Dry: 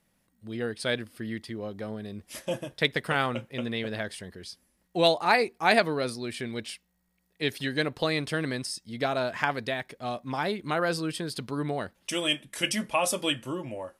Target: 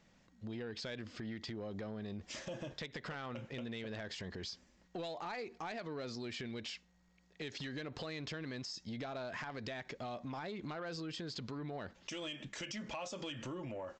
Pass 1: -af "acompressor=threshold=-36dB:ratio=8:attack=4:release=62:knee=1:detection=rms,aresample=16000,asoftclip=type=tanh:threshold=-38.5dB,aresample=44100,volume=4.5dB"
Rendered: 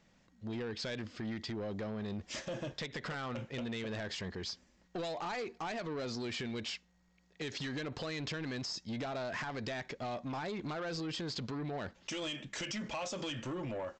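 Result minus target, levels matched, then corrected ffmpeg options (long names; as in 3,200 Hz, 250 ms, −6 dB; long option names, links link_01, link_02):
downward compressor: peak gain reduction −6.5 dB
-af "acompressor=threshold=-43.5dB:ratio=8:attack=4:release=62:knee=1:detection=rms,aresample=16000,asoftclip=type=tanh:threshold=-38.5dB,aresample=44100,volume=4.5dB"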